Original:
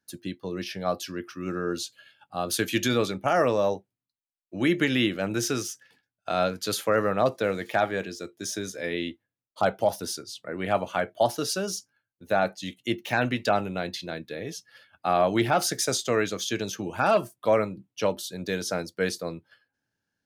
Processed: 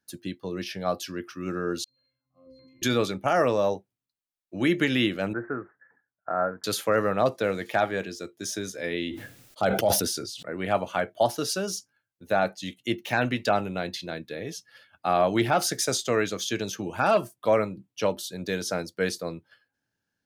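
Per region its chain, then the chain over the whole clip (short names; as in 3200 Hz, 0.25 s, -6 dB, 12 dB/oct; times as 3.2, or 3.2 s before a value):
1.84–2.82 transient shaper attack -9 dB, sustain +11 dB + compressor, threshold -32 dBFS + octave resonator C, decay 0.64 s
5.33–6.64 block floating point 5-bit + steep low-pass 1800 Hz 72 dB/oct + tilt +2.5 dB/oct
9–10.43 bell 1000 Hz -7.5 dB 0.47 oct + sustainer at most 41 dB/s
whole clip: dry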